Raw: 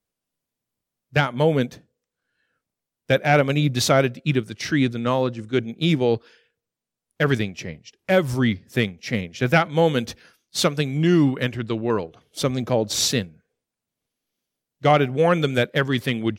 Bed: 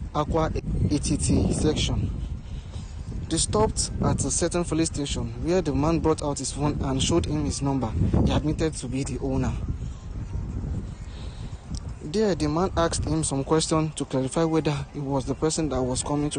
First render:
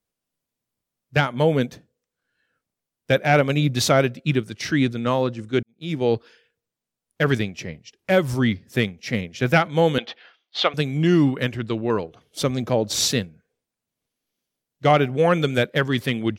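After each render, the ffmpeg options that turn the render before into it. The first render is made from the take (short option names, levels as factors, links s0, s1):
-filter_complex "[0:a]asettb=1/sr,asplit=3[s0][s1][s2];[s0]atrim=end=9.984[s3];[s1]atrim=start=9.98:end=10.74,asetpts=PTS-STARTPTS,afade=t=in:d=0.004:c=qsin,afade=t=out:st=0.756:d=0.004:c=qsin,highpass=490,equalizer=f=750:t=q:w=4:g=8,equalizer=f=1200:t=q:w=4:g=3,equalizer=f=2000:t=q:w=4:g=4,equalizer=f=3200:t=q:w=4:g=8,lowpass=f=4000:w=0.5412,lowpass=f=4000:w=1.3066[s4];[s2]atrim=start=10.736[s5];[s3][s4]acrossfade=d=0.004:c1=hsin:c2=qsin[s6];[s6][s5]acrossfade=d=0.004:c1=qsin:c2=hsin,asplit=2[s7][s8];[s7]atrim=end=5.63,asetpts=PTS-STARTPTS,afade=t=out:st=5.626:d=0.004:c=hsin[s9];[s8]atrim=start=5.63,asetpts=PTS-STARTPTS,afade=t=in:d=0.44:c=qua[s10];[s9][s10]concat=n=2:v=0:a=1"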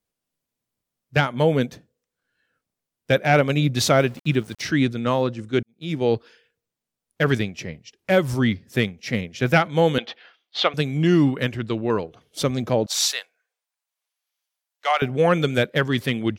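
-filter_complex "[0:a]asettb=1/sr,asplit=3[s0][s1][s2];[s0]atrim=end=3.894[s3];[s1]atrim=start=3.89:end=4.63,asetpts=PTS-STARTPTS,afade=t=in:d=0.004:c=qsin,afade=t=out:st=0.736:d=0.004:c=qsin,aeval=exprs='val(0)*gte(abs(val(0)),0.00841)':c=same[s4];[s2]atrim=start=4.626[s5];[s3][s4]acrossfade=d=0.004:c1=hsin:c2=qsin[s6];[s6][s5]acrossfade=d=0.004:c1=qsin:c2=hsin,asettb=1/sr,asplit=3[s7][s8][s9];[s7]atrim=end=12.864[s10];[s8]atrim=start=12.86:end=15.02,asetpts=PTS-STARTPTS,afade=t=in:d=0.004:c=qsin,afade=t=out:st=2.156:d=0.004:c=qsin,highpass=f=750:w=0.5412,highpass=f=750:w=1.3066[s11];[s9]atrim=start=15.016[s12];[s10][s11]acrossfade=d=0.004:c1=hsin:c2=qsin[s13];[s13][s12]acrossfade=d=0.004:c1=qsin:c2=hsin"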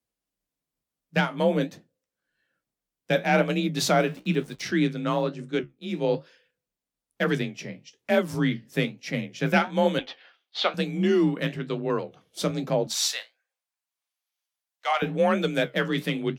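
-af "flanger=delay=9.4:depth=9.7:regen=-57:speed=1.1:shape=triangular,afreqshift=32"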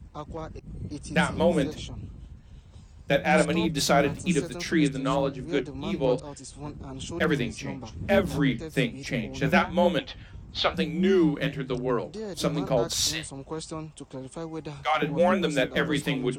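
-filter_complex "[1:a]volume=0.224[s0];[0:a][s0]amix=inputs=2:normalize=0"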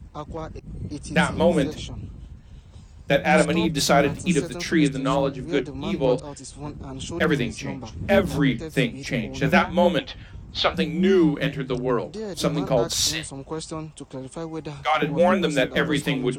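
-af "volume=1.5"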